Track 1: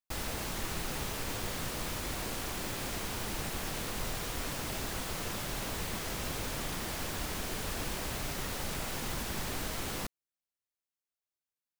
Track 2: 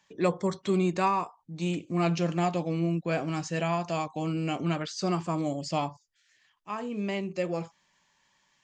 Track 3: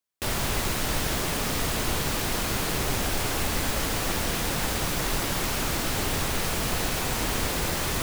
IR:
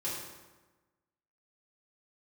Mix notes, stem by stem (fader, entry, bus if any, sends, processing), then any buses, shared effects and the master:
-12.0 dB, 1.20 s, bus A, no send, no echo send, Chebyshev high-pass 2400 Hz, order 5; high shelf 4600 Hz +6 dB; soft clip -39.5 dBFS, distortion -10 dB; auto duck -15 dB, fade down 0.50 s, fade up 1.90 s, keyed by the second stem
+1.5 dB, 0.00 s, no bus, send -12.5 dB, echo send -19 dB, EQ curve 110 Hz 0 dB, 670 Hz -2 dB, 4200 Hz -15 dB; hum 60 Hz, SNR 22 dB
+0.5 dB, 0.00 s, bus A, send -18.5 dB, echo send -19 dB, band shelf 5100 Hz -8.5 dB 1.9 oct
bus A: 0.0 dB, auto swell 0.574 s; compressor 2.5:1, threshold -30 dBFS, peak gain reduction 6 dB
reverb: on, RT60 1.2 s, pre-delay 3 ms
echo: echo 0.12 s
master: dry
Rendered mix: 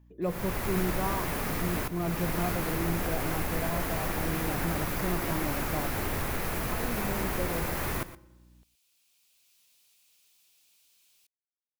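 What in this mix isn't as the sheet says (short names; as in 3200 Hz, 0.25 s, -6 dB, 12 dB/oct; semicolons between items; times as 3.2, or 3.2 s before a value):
stem 1 -12.0 dB -> -22.5 dB; stem 2 +1.5 dB -> -4.5 dB; reverb return -9.0 dB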